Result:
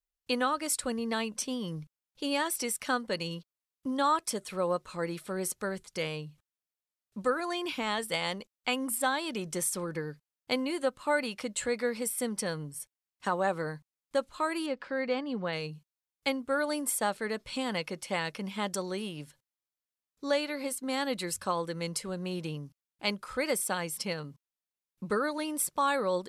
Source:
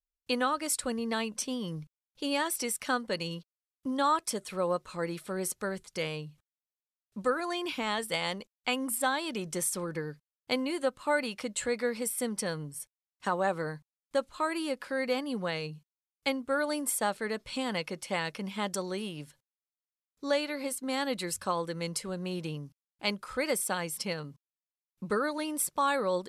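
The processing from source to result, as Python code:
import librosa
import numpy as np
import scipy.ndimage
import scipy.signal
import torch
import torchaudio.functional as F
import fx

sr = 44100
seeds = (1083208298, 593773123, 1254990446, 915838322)

y = fx.air_absorb(x, sr, metres=140.0, at=(14.66, 15.53))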